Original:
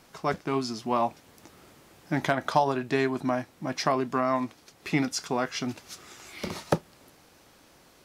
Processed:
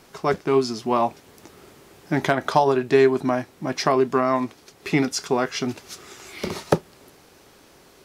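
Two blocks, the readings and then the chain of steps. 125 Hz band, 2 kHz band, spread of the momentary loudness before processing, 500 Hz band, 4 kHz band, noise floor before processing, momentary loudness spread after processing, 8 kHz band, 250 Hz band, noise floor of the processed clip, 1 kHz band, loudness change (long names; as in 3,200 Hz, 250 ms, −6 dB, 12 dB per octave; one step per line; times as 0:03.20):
+4.5 dB, +4.5 dB, 12 LU, +8.5 dB, +4.5 dB, −58 dBFS, 14 LU, +4.5 dB, +5.5 dB, −53 dBFS, +4.5 dB, +6.5 dB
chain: parametric band 400 Hz +8 dB 0.24 octaves
level +4.5 dB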